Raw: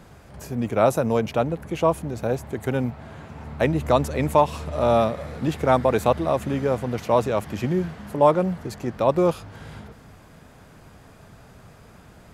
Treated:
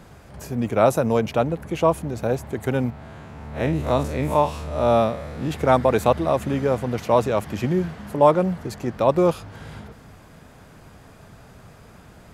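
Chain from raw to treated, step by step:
0:02.90–0:05.51: spectrum smeared in time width 84 ms
level +1.5 dB

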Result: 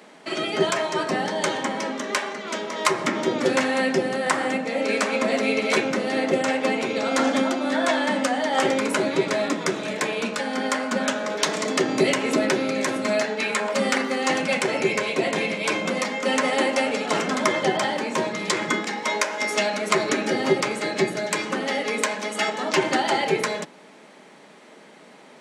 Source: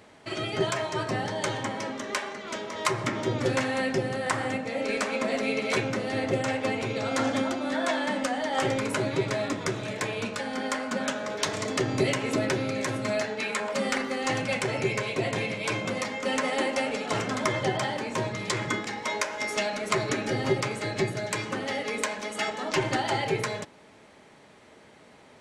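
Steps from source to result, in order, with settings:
Butterworth high-pass 160 Hz 48 dB per octave
level +5.5 dB

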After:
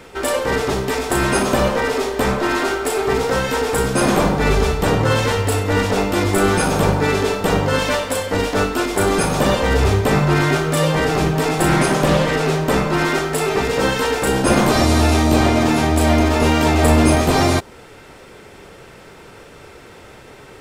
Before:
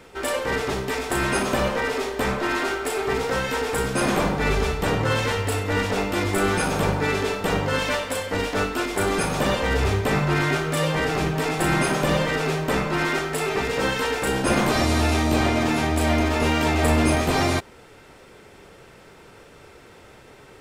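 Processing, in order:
dynamic equaliser 2,200 Hz, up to −4 dB, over −37 dBFS, Q 0.98
0:11.69–0:12.67: highs frequency-modulated by the lows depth 0.18 ms
level +6.5 dB

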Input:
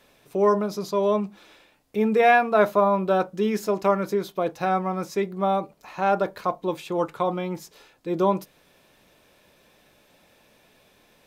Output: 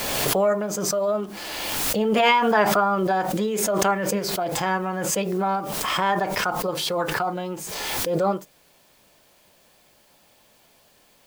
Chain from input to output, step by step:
formants moved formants +4 semitones
bit-depth reduction 10 bits, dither triangular
background raised ahead of every attack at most 24 dB per second
level −1.5 dB

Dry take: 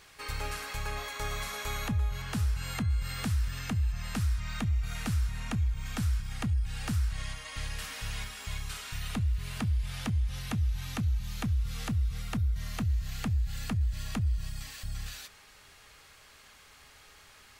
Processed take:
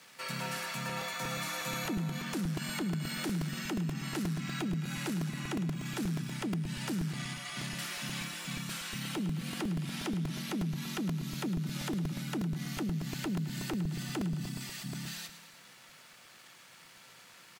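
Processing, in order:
low-shelf EQ 72 Hz −9.5 dB
leveller curve on the samples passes 2
frequency shifter +100 Hz
on a send: repeating echo 107 ms, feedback 57%, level −12 dB
on the sum: regular buffer underruns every 0.12 s, samples 128, repeat, from 0:00.89
level −6 dB

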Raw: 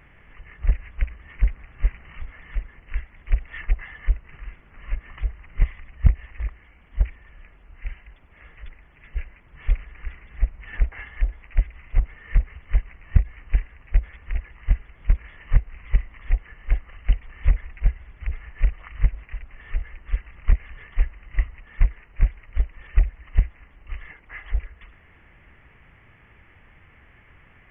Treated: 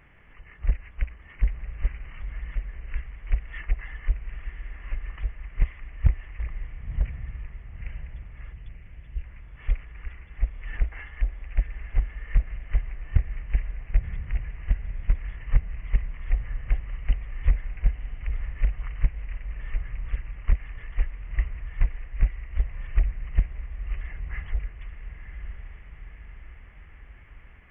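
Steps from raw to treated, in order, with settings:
0:08.53–0:09.24: flat-topped bell 1,100 Hz −15.5 dB 2.5 octaves
feedback delay with all-pass diffusion 1,000 ms, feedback 52%, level −8.5 dB
highs frequency-modulated by the lows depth 0.42 ms
level −3.5 dB

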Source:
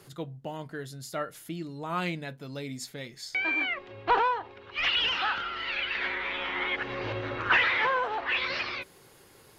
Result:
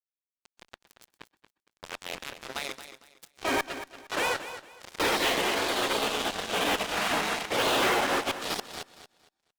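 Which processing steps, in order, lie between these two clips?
low-pass filter 9,200 Hz 12 dB per octave
gate on every frequency bin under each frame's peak −15 dB weak
high-pass filter 390 Hz 12 dB per octave
tilt shelving filter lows +8.5 dB, about 700 Hz
volume swells 241 ms
0:01.22–0:02.25: ring modulation 44 Hz
0:04.36–0:05.00: downward compressor 16 to 1, threshold −55 dBFS, peak gain reduction 17 dB
fuzz pedal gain 49 dB, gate −51 dBFS
repeating echo 230 ms, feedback 26%, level −12 dB
on a send at −23 dB: convolution reverb, pre-delay 117 ms
on the sum: level −9 dB

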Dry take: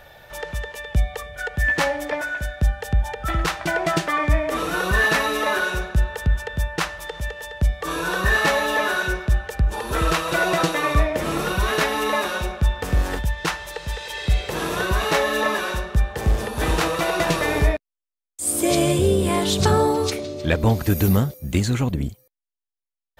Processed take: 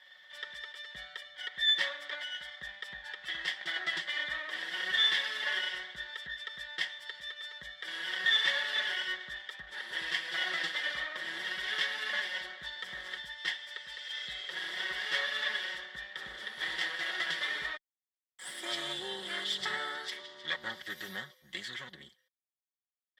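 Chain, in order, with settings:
lower of the sound and its delayed copy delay 0.38 ms
pair of resonant band-passes 2,500 Hz, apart 0.87 octaves
comb filter 5.4 ms, depth 66%

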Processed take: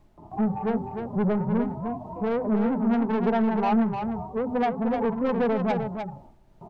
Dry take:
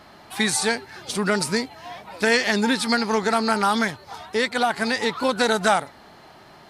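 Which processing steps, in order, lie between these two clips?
harmonic-percussive split with one part muted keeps harmonic
Butterworth low-pass 1,100 Hz 72 dB per octave
mains-hum notches 50/100/150/200/250/300/350/400 Hz
noise gate with hold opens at −42 dBFS
low-shelf EQ 320 Hz +9.5 dB
in parallel at −2 dB: downward compressor, threshold −28 dBFS, peak gain reduction 14 dB
on the sum: background noise brown −56 dBFS
soft clipping −19.5 dBFS, distortion −9 dB
amplitude tremolo 2.4 Hz, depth 31%
single-tap delay 303 ms −6.5 dB

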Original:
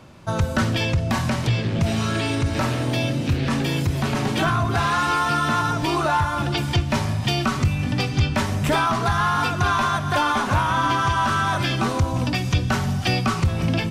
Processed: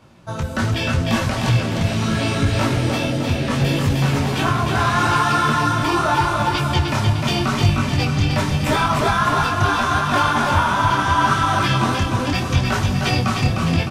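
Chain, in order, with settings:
automatic gain control gain up to 5 dB
on a send: repeating echo 305 ms, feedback 55%, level −4 dB
on the sum: micro pitch shift up and down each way 27 cents

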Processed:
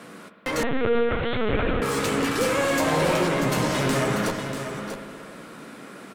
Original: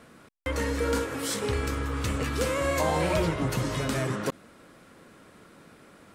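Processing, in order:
sub-octave generator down 2 octaves, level −3 dB
high-pass filter 150 Hz 24 dB per octave
in parallel at −1 dB: brickwall limiter −28 dBFS, peak gain reduction 13.5 dB
on the sum: asymmetric clip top −30.5 dBFS, bottom −21 dBFS
flanger 0.41 Hz, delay 9.8 ms, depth 6.5 ms, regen −25%
single-tap delay 639 ms −8.5 dB
on a send at −6.5 dB: convolution reverb RT60 2.3 s, pre-delay 58 ms
0:00.63–0:01.82: on the sum: linear-prediction vocoder at 8 kHz pitch kept
level +8 dB

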